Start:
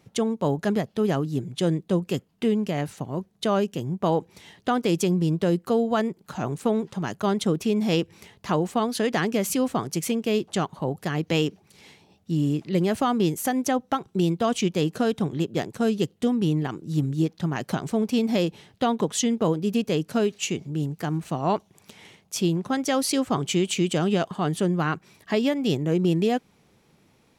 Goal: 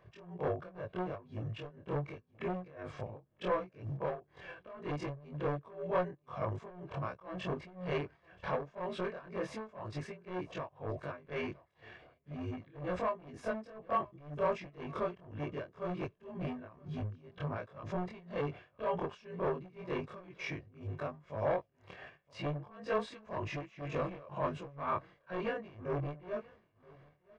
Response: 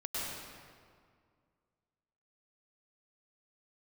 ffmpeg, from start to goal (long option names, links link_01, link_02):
-filter_complex "[0:a]afftfilt=real='re':imag='-im':win_size=2048:overlap=0.75,volume=26dB,asoftclip=hard,volume=-26dB,alimiter=level_in=8dB:limit=-24dB:level=0:latency=1:release=10,volume=-8dB,equalizer=frequency=240:width_type=o:width=1.2:gain=-3.5,tremolo=f=2:d=0.91,asplit=2[link_01][link_02];[link_02]aecho=0:1:974|1948:0.0668|0.0107[link_03];[link_01][link_03]amix=inputs=2:normalize=0,asetrate=37084,aresample=44100,atempo=1.18921,lowpass=1500,lowshelf=frequency=480:gain=-10,aecho=1:1:1.8:0.44,volume=10dB"